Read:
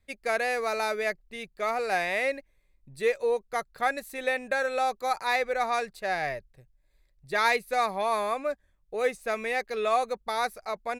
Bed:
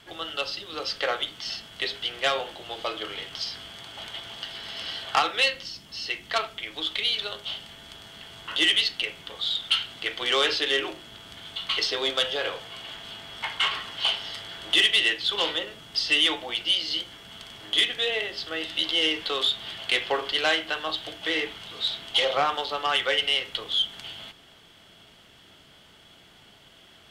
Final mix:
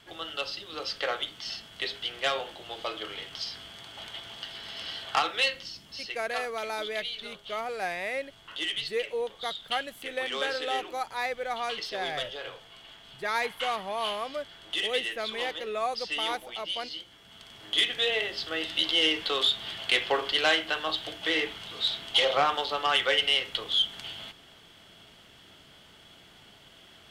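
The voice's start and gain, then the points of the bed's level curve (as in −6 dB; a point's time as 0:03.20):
5.90 s, −5.0 dB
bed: 0:05.94 −3.5 dB
0:06.22 −10.5 dB
0:17.06 −10.5 dB
0:18.02 −0.5 dB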